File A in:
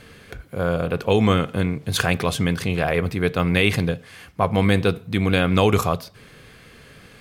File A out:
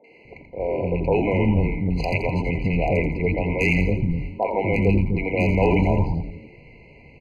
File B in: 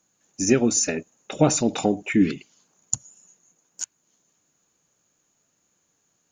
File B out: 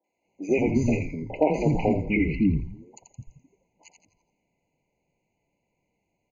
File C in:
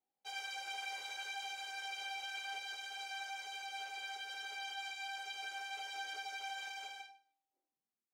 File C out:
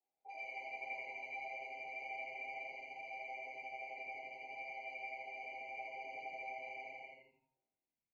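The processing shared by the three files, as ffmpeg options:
ffmpeg -i in.wav -filter_complex "[0:a]lowpass=frequency=1800:width_type=q:width=2,acrossover=split=300|1000[link_01][link_02][link_03];[link_03]adelay=40[link_04];[link_01]adelay=250[link_05];[link_05][link_02][link_04]amix=inputs=3:normalize=0,volume=9dB,asoftclip=hard,volume=-9dB,asplit=2[link_06][link_07];[link_07]asplit=5[link_08][link_09][link_10][link_11][link_12];[link_08]adelay=84,afreqshift=-130,volume=-6dB[link_13];[link_09]adelay=168,afreqshift=-260,volume=-13.1dB[link_14];[link_10]adelay=252,afreqshift=-390,volume=-20.3dB[link_15];[link_11]adelay=336,afreqshift=-520,volume=-27.4dB[link_16];[link_12]adelay=420,afreqshift=-650,volume=-34.5dB[link_17];[link_13][link_14][link_15][link_16][link_17]amix=inputs=5:normalize=0[link_18];[link_06][link_18]amix=inputs=2:normalize=0,afftfilt=real='re*eq(mod(floor(b*sr/1024/1000),2),0)':imag='im*eq(mod(floor(b*sr/1024/1000),2),0)':win_size=1024:overlap=0.75" out.wav

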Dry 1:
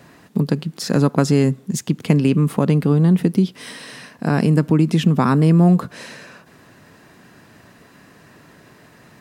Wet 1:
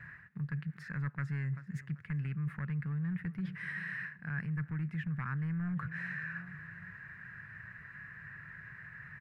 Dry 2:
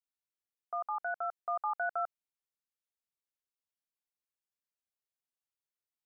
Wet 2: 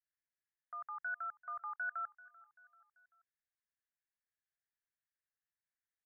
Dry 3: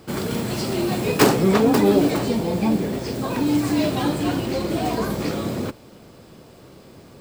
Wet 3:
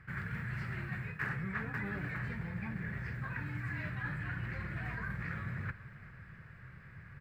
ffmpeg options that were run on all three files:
ffmpeg -i in.wav -af "aecho=1:1:388|776|1164:0.0668|0.0341|0.0174,asoftclip=type=hard:threshold=-8dB,firequalizer=gain_entry='entry(140,0);entry(260,-23);entry(700,-20);entry(1700,9);entry(3200,-20);entry(5900,-27)':delay=0.05:min_phase=1,areverse,acompressor=threshold=-36dB:ratio=4,areverse,volume=-1dB" out.wav

